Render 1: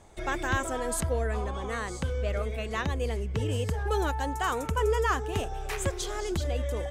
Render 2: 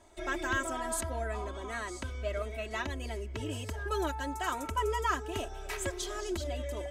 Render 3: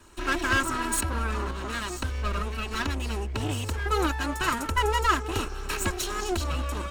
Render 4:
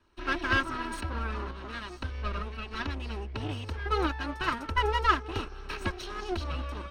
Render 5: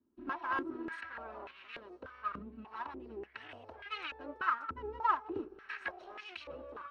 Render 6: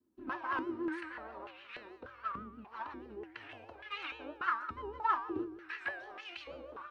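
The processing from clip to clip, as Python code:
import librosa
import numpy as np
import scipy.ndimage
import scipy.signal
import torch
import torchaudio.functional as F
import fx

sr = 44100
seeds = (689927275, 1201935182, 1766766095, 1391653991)

y1 = fx.low_shelf(x, sr, hz=180.0, db=-7.0)
y1 = y1 + 0.93 * np.pad(y1, (int(3.1 * sr / 1000.0), 0))[:len(y1)]
y1 = F.gain(torch.from_numpy(y1), -5.5).numpy()
y2 = fx.lower_of_two(y1, sr, delay_ms=0.73)
y2 = F.gain(torch.from_numpy(y2), 8.5).numpy()
y3 = scipy.signal.savgol_filter(y2, 15, 4, mode='constant')
y3 = fx.upward_expand(y3, sr, threshold_db=-46.0, expansion=1.5)
y4 = fx.filter_held_bandpass(y3, sr, hz=3.4, low_hz=250.0, high_hz=2500.0)
y4 = F.gain(torch.from_numpy(y4), 2.5).numpy()
y5 = fx.comb_fb(y4, sr, f0_hz=110.0, decay_s=0.72, harmonics='odd', damping=0.0, mix_pct=80)
y5 = fx.vibrato(y5, sr, rate_hz=6.3, depth_cents=96.0)
y5 = F.gain(torch.from_numpy(y5), 11.5).numpy()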